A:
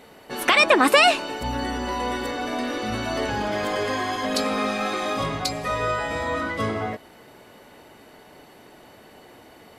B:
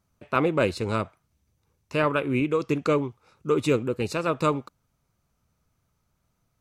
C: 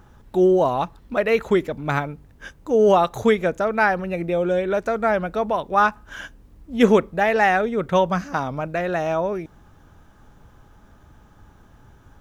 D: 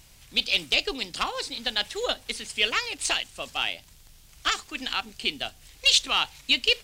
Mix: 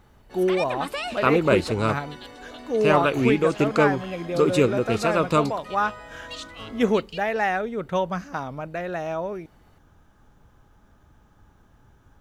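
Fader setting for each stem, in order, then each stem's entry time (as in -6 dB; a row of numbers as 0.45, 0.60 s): -15.5, +3.0, -6.0, -19.0 dB; 0.00, 0.90, 0.00, 0.45 s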